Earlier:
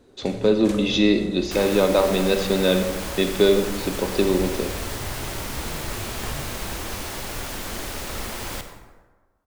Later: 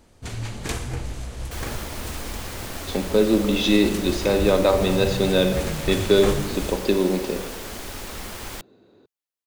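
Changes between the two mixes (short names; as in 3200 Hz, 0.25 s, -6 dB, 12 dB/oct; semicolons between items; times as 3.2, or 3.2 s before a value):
speech: entry +2.70 s; first sound +7.5 dB; second sound: send off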